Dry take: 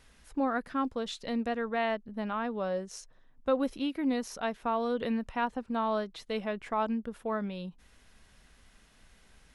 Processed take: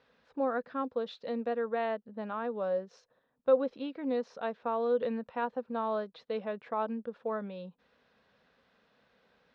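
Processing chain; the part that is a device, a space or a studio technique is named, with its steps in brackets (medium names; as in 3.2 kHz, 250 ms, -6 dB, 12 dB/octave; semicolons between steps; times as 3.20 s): kitchen radio (cabinet simulation 190–3900 Hz, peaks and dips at 330 Hz -6 dB, 500 Hz +9 dB, 2.1 kHz -6 dB, 3 kHz -6 dB); trim -3 dB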